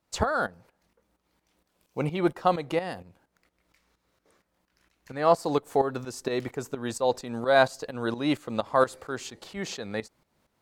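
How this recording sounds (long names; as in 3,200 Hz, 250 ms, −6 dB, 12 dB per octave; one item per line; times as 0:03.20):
tremolo saw up 4.3 Hz, depth 75%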